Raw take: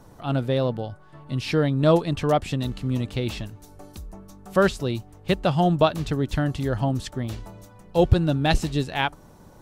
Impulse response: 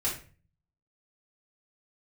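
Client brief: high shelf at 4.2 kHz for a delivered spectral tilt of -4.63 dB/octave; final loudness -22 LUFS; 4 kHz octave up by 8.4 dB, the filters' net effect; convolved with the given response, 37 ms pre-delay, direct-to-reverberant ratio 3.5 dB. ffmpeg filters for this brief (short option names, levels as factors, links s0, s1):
-filter_complex "[0:a]equalizer=f=4000:t=o:g=6,highshelf=f=4200:g=8,asplit=2[s0][s1];[1:a]atrim=start_sample=2205,adelay=37[s2];[s1][s2]afir=irnorm=-1:irlink=0,volume=0.316[s3];[s0][s3]amix=inputs=2:normalize=0,volume=0.891"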